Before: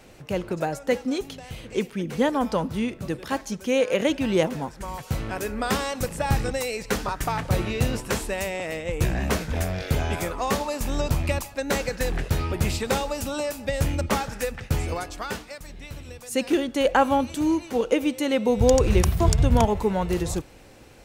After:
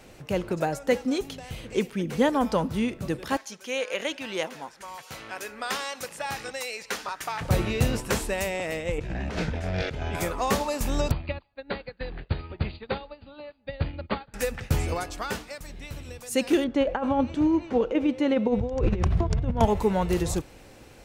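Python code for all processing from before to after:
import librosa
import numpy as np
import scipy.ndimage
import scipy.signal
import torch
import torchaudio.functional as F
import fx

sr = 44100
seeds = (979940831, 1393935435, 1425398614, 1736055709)

y = fx.chain(x, sr, fx.highpass(hz=1300.0, slope=6),
    fx.high_shelf(hz=10000.0, db=-8.5),
    fx.notch(hz=7900.0, q=19.0), at=(3.37, 7.41))
y = fx.chain(y, sr, fx.notch(hz=1100.0, q=12.0),
    fx.over_compress(threshold_db=-30.0, ratio=-1.0),
    fx.lowpass(hz=4700.0, slope=12), at=(8.98, 10.15))
y = fx.chain(y, sr, fx.brickwall_lowpass(high_hz=4800.0),
    fx.upward_expand(threshold_db=-37.0, expansion=2.5), at=(11.11, 14.34))
y = fx.chain(y, sr, fx.over_compress(threshold_db=-21.0, ratio=-0.5),
    fx.spacing_loss(db_at_10k=27), at=(16.64, 19.61))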